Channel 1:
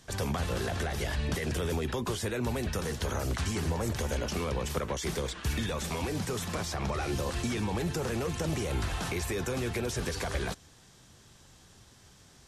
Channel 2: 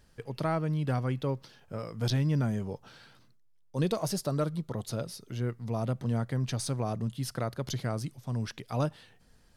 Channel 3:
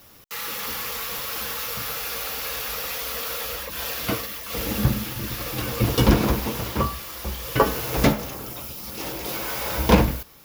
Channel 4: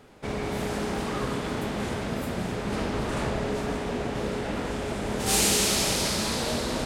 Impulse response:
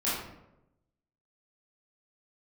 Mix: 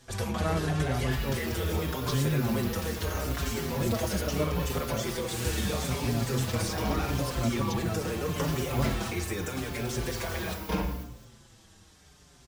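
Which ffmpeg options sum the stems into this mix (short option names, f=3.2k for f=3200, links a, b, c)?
-filter_complex "[0:a]volume=1dB,asplit=2[a][b];[b]volume=-14dB[c];[1:a]volume=0.5dB[d];[2:a]adelay=800,volume=-14dB,asplit=2[e][f];[f]volume=-10dB[g];[3:a]volume=-13dB[h];[4:a]atrim=start_sample=2205[i];[c][g]amix=inputs=2:normalize=0[j];[j][i]afir=irnorm=-1:irlink=0[k];[a][d][e][h][k]amix=inputs=5:normalize=0,asplit=2[l][m];[m]adelay=5.5,afreqshift=-0.79[n];[l][n]amix=inputs=2:normalize=1"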